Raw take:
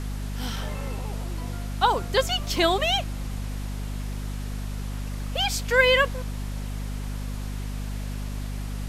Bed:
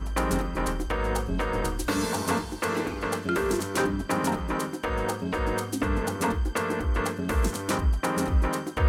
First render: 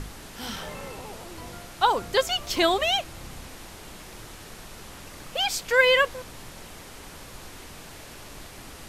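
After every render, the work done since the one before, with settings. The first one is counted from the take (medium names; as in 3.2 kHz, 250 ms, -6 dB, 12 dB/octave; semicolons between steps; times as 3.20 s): hum notches 50/100/150/200/250 Hz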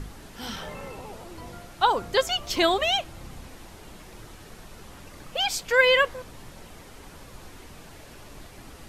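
noise reduction 6 dB, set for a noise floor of -44 dBFS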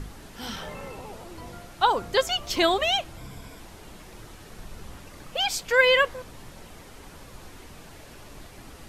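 3.17–3.60 s: rippled EQ curve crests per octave 1.7, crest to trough 9 dB; 4.55–4.98 s: bass shelf 160 Hz +6.5 dB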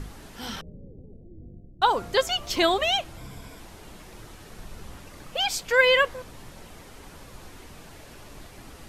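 0.61–1.82 s: Gaussian low-pass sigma 24 samples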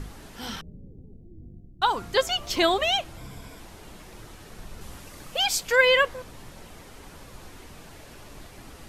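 0.57–2.16 s: peaking EQ 550 Hz -9 dB; 4.81–5.76 s: treble shelf 4.7 kHz +6 dB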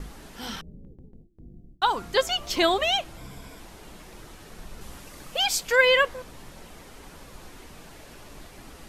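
gate with hold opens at -37 dBFS; peaking EQ 100 Hz -12 dB 0.27 oct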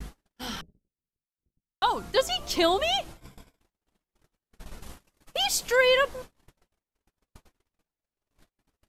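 gate -39 dBFS, range -50 dB; dynamic bell 1.9 kHz, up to -5 dB, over -36 dBFS, Q 0.9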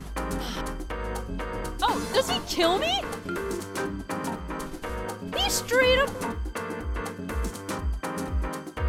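add bed -5 dB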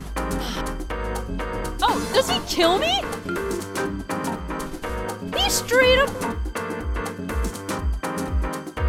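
trim +4.5 dB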